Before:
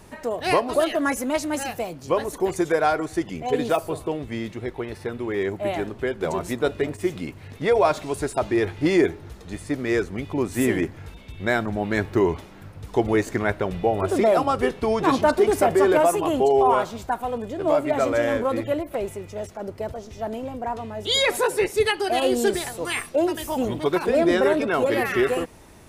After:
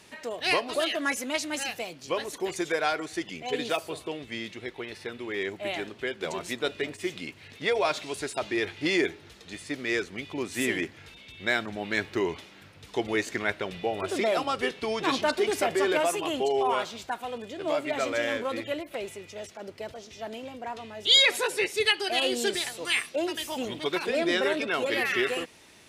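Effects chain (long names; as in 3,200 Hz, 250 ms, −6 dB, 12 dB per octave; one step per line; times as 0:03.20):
meter weighting curve D
level −7.5 dB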